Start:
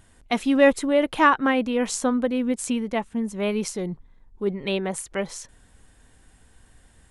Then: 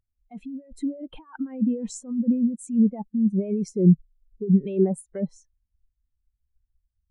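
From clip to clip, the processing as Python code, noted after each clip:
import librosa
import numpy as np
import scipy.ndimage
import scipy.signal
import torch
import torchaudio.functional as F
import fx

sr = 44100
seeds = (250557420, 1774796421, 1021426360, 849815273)

y = fx.over_compress(x, sr, threshold_db=-29.0, ratio=-1.0)
y = fx.spectral_expand(y, sr, expansion=2.5)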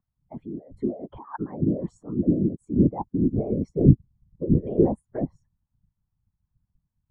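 y = fx.peak_eq(x, sr, hz=930.0, db=12.0, octaves=0.85)
y = fx.whisperise(y, sr, seeds[0])
y = scipy.signal.savgol_filter(y, 41, 4, mode='constant')
y = y * 10.0 ** (-1.0 / 20.0)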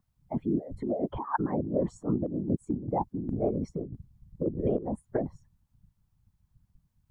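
y = fx.over_compress(x, sr, threshold_db=-31.0, ratio=-1.0)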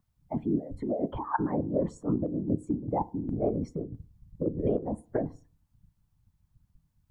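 y = fx.rev_fdn(x, sr, rt60_s=0.38, lf_ratio=1.0, hf_ratio=0.4, size_ms=20.0, drr_db=14.5)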